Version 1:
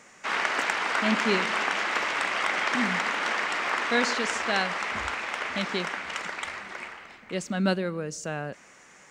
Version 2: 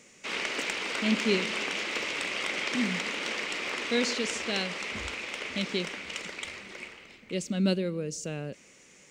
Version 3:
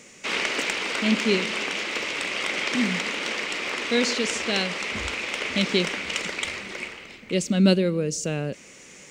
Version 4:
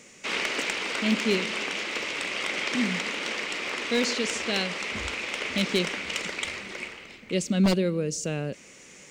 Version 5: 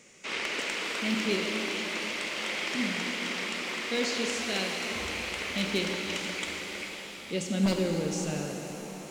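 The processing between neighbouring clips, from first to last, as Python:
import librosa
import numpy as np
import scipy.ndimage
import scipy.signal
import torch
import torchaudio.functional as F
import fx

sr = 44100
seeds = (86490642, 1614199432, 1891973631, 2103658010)

y1 = fx.band_shelf(x, sr, hz=1100.0, db=-11.5, octaves=1.7)
y2 = fx.rider(y1, sr, range_db=5, speed_s=2.0)
y2 = F.gain(torch.from_numpy(y2), 5.0).numpy()
y3 = 10.0 ** (-12.0 / 20.0) * (np.abs((y2 / 10.0 ** (-12.0 / 20.0) + 3.0) % 4.0 - 2.0) - 1.0)
y3 = F.gain(torch.from_numpy(y3), -2.5).numpy()
y4 = fx.rev_shimmer(y3, sr, seeds[0], rt60_s=3.8, semitones=7, shimmer_db=-8, drr_db=1.5)
y4 = F.gain(torch.from_numpy(y4), -5.5).numpy()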